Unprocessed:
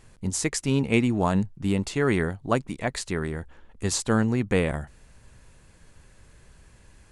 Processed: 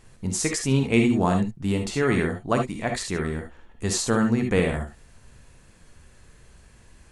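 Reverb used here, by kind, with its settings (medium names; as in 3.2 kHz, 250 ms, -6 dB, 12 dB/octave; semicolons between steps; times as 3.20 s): gated-style reverb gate 90 ms rising, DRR 3.5 dB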